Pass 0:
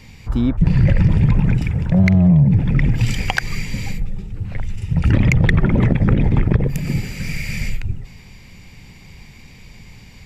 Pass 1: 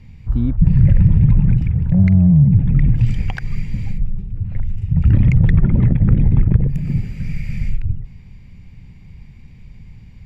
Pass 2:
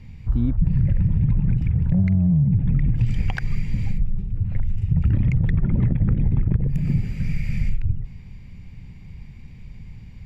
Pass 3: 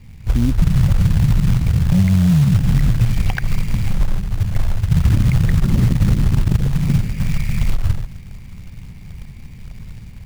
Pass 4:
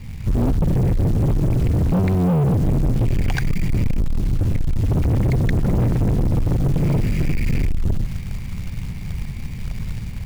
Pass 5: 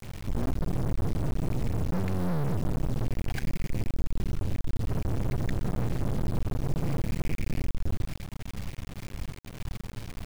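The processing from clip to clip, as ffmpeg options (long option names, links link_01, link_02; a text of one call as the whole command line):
ffmpeg -i in.wav -af "bass=frequency=250:gain=14,treble=frequency=4000:gain=-9,volume=-10.5dB" out.wav
ffmpeg -i in.wav -af "acompressor=threshold=-15dB:ratio=6" out.wav
ffmpeg -i in.wav -af "acrusher=bits=5:mode=log:mix=0:aa=0.000001,dynaudnorm=framelen=150:gausssize=3:maxgain=5dB" out.wav
ffmpeg -i in.wav -filter_complex "[0:a]asplit=2[link_01][link_02];[link_02]alimiter=limit=-13.5dB:level=0:latency=1:release=130,volume=2dB[link_03];[link_01][link_03]amix=inputs=2:normalize=0,asoftclip=type=hard:threshold=-15.5dB" out.wav
ffmpeg -i in.wav -af "acrusher=bits=3:dc=4:mix=0:aa=0.000001,volume=-7dB" out.wav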